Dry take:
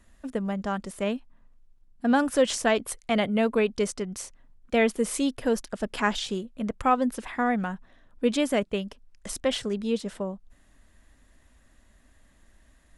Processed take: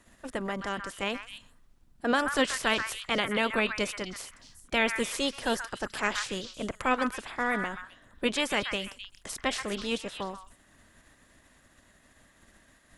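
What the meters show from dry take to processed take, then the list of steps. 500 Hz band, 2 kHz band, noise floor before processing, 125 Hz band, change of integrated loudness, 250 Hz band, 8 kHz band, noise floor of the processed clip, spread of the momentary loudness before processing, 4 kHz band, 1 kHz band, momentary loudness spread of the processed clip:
−6.0 dB, +3.0 dB, −60 dBFS, −6.5 dB, −3.0 dB, −7.0 dB, −2.5 dB, −62 dBFS, 11 LU, +2.5 dB, −2.5 dB, 13 LU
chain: ceiling on every frequency bin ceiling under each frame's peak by 17 dB
echo through a band-pass that steps 129 ms, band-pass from 1,500 Hz, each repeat 1.4 octaves, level −3.5 dB
level −4 dB

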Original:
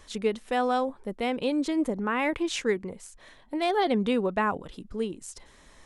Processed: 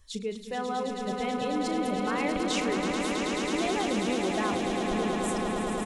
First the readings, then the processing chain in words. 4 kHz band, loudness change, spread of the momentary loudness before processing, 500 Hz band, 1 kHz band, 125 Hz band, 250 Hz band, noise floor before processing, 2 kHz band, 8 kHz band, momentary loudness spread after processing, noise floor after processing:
+2.5 dB, −1.0 dB, 14 LU, −1.5 dB, −0.5 dB, +2.5 dB, 0.0 dB, −56 dBFS, 0.0 dB, +5.0 dB, 4 LU, −39 dBFS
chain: spectral dynamics exaggerated over time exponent 1.5
in parallel at +3 dB: compressor whose output falls as the input rises −36 dBFS, ratio −1
on the sum: double-tracking delay 37 ms −11.5 dB
echo that builds up and dies away 108 ms, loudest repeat 8, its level −7.5 dB
level −7.5 dB

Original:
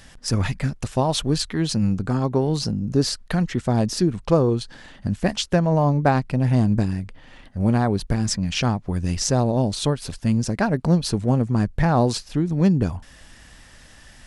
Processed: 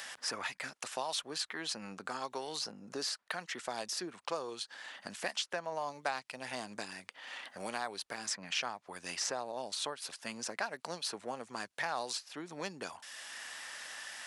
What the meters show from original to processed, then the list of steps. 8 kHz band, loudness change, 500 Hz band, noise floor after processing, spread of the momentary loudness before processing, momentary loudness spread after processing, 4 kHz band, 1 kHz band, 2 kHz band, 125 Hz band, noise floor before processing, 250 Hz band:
−9.0 dB, −17.5 dB, −17.5 dB, −73 dBFS, 6 LU, 8 LU, −8.5 dB, −12.5 dB, −6.5 dB, −37.5 dB, −48 dBFS, −27.5 dB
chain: high-pass filter 850 Hz 12 dB per octave
multiband upward and downward compressor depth 70%
level −8 dB

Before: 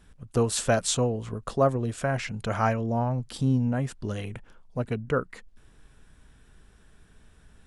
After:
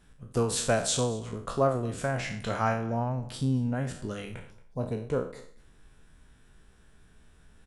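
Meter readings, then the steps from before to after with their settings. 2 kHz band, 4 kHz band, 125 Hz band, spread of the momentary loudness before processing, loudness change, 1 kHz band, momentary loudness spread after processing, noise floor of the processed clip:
−2.0 dB, −1.0 dB, −3.5 dB, 10 LU, −2.5 dB, −2.0 dB, 12 LU, −58 dBFS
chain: peak hold with a decay on every bin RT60 0.47 s
mains-hum notches 50/100 Hz
gain on a spectral selection 0:04.51–0:05.59, 1,100–3,400 Hz −10 dB
on a send: single-tap delay 227 ms −21.5 dB
on the sum: level −3.5 dB

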